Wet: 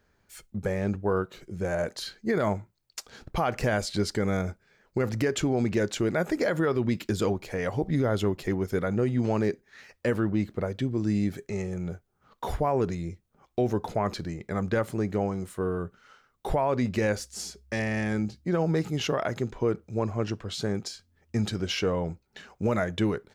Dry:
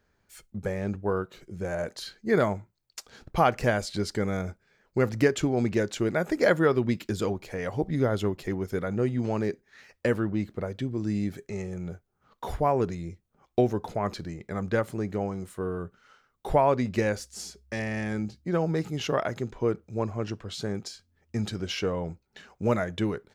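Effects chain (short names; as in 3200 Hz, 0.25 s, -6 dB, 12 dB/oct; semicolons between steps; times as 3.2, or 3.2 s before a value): limiter -19 dBFS, peak gain reduction 10.5 dB; gain +2.5 dB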